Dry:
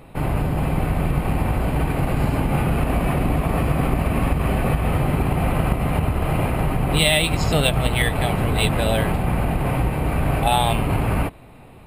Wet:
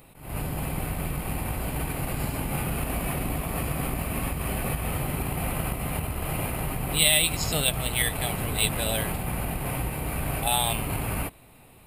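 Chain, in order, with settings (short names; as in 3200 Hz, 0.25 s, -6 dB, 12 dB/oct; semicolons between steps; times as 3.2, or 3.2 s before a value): pre-emphasis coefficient 0.8; attack slew limiter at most 110 dB/s; gain +4.5 dB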